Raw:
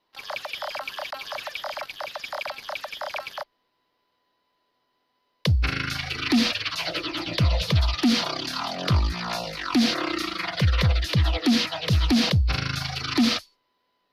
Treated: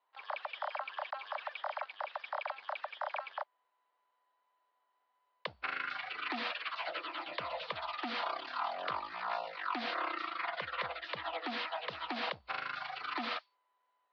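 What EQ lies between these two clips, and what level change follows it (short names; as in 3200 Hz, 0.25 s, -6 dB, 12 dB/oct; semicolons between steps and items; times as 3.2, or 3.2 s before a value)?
Chebyshev band-pass 850–4700 Hz, order 2; air absorption 330 m; high shelf 2200 Hz -10 dB; 0.0 dB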